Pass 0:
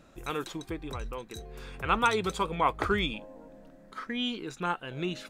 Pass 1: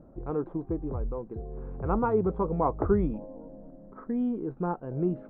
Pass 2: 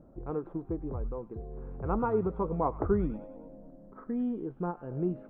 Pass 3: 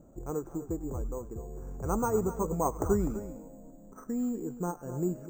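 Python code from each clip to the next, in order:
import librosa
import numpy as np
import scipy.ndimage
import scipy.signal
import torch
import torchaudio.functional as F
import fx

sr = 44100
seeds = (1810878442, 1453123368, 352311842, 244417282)

y1 = scipy.signal.sosfilt(scipy.signal.bessel(4, 590.0, 'lowpass', norm='mag', fs=sr, output='sos'), x)
y1 = y1 * librosa.db_to_amplitude(6.5)
y2 = fx.echo_wet_highpass(y1, sr, ms=99, feedback_pct=49, hz=1900.0, wet_db=-8.5)
y2 = fx.end_taper(y2, sr, db_per_s=290.0)
y2 = y2 * librosa.db_to_amplitude(-3.0)
y3 = np.repeat(y2[::6], 6)[:len(y2)]
y3 = y3 + 10.0 ** (-13.0 / 20.0) * np.pad(y3, (int(252 * sr / 1000.0), 0))[:len(y3)]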